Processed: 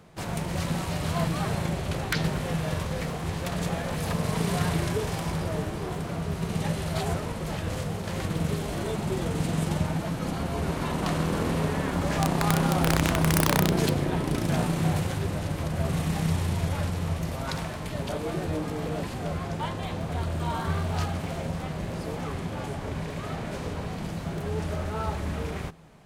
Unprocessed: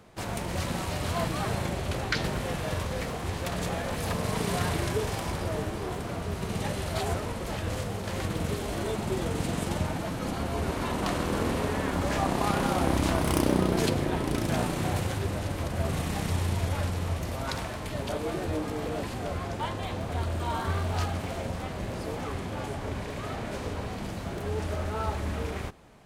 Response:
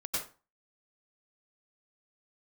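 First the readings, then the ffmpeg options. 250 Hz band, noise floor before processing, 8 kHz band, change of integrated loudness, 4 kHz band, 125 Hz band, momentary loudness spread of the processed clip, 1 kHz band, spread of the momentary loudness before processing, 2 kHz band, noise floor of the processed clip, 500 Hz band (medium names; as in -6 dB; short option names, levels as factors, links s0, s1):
+2.5 dB, -36 dBFS, +1.5 dB, +2.0 dB, +1.0 dB, +3.5 dB, 9 LU, +0.5 dB, 8 LU, +1.0 dB, -35 dBFS, 0.0 dB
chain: -af "equalizer=f=160:t=o:w=0.21:g=12,aeval=exprs='(mod(4.22*val(0)+1,2)-1)/4.22':c=same"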